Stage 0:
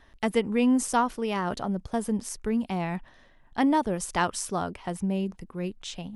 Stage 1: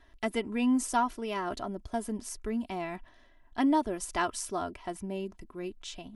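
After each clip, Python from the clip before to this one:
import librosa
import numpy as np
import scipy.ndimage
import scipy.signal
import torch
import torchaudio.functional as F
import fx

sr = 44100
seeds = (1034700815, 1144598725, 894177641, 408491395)

y = x + 0.64 * np.pad(x, (int(3.0 * sr / 1000.0), 0))[:len(x)]
y = F.gain(torch.from_numpy(y), -5.5).numpy()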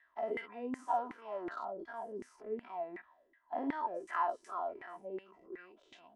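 y = fx.spec_dilate(x, sr, span_ms=120)
y = fx.filter_lfo_bandpass(y, sr, shape='saw_down', hz=2.7, low_hz=320.0, high_hz=2000.0, q=6.9)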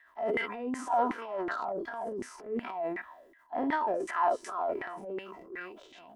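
y = fx.transient(x, sr, attack_db=-7, sustain_db=8)
y = F.gain(torch.from_numpy(y), 7.0).numpy()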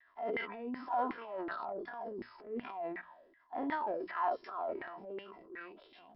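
y = fx.brickwall_lowpass(x, sr, high_hz=5400.0)
y = fx.hum_notches(y, sr, base_hz=60, count=3)
y = fx.vibrato(y, sr, rate_hz=1.2, depth_cents=52.0)
y = F.gain(torch.from_numpy(y), -6.0).numpy()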